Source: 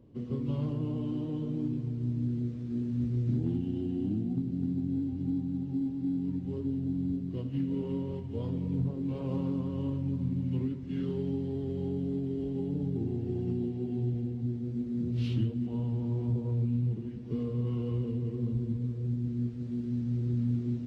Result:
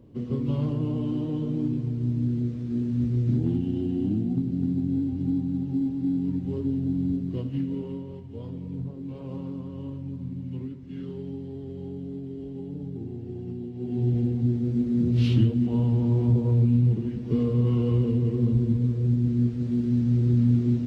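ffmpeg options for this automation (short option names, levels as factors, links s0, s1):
-af "volume=7.5,afade=t=out:st=7.32:d=0.72:silence=0.375837,afade=t=in:st=13.72:d=0.48:silence=0.251189"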